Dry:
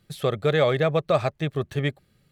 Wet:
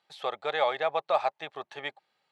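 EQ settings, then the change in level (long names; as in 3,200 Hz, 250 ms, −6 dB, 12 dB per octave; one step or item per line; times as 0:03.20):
high-pass with resonance 850 Hz, resonance Q 5.9
low-pass filter 4,000 Hz 12 dB per octave
parametric band 1,100 Hz −8.5 dB 2.5 octaves
0.0 dB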